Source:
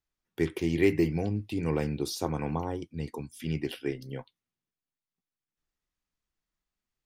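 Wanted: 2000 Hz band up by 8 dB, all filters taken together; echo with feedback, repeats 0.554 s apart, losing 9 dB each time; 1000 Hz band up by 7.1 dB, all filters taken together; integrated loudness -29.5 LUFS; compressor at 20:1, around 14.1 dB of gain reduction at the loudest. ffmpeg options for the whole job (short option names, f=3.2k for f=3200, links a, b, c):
-af "equalizer=f=1k:t=o:g=7.5,equalizer=f=2k:t=o:g=7.5,acompressor=threshold=-29dB:ratio=20,aecho=1:1:554|1108|1662|2216:0.355|0.124|0.0435|0.0152,volume=6.5dB"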